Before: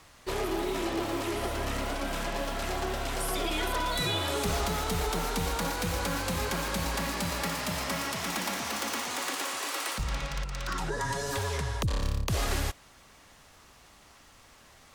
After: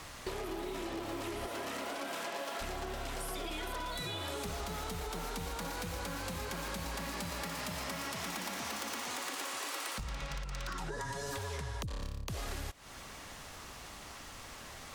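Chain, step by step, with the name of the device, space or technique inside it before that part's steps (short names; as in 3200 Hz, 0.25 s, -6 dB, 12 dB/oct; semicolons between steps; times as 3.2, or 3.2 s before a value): 1.46–2.6 HPF 190 Hz -> 420 Hz 12 dB/oct; serial compression, peaks first (compressor, threshold -40 dBFS, peak gain reduction 14.5 dB; compressor 2:1, threshold -47 dBFS, peak gain reduction 6 dB); gain +7.5 dB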